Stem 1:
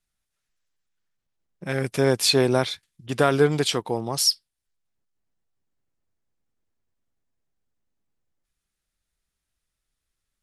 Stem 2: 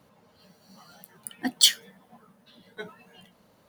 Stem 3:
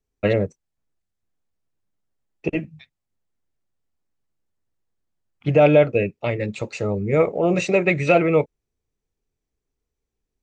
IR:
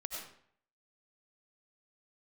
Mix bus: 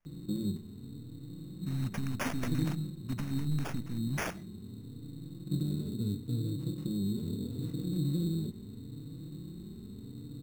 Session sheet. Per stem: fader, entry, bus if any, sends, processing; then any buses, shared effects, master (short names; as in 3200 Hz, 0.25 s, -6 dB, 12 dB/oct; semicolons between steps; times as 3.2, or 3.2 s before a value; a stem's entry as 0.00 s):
+0.5 dB, 0.00 s, send -17.5 dB, band shelf 790 Hz -9.5 dB 2.5 oct; limiter -18 dBFS, peak gain reduction 9.5 dB; wavefolder -25 dBFS
-6.5 dB, 0.80 s, no send, Chebyshev low-pass 6900 Hz, order 2
-9.5 dB, 0.05 s, no send, per-bin compression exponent 0.2; endless flanger 3.7 ms +0.76 Hz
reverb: on, RT60 0.60 s, pre-delay 55 ms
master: elliptic band-stop 260–9300 Hz, stop band 40 dB; sample-rate reducer 4000 Hz, jitter 0%